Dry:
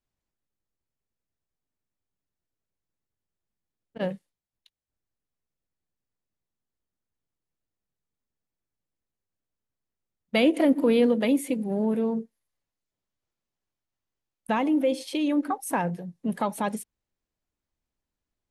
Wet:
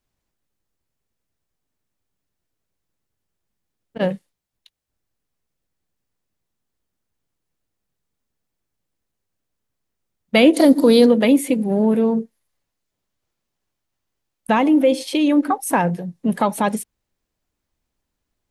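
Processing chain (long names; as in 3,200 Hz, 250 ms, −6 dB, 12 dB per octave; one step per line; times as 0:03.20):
0:10.53–0:11.06: high shelf with overshoot 3,400 Hz +7.5 dB, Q 3
level +8.5 dB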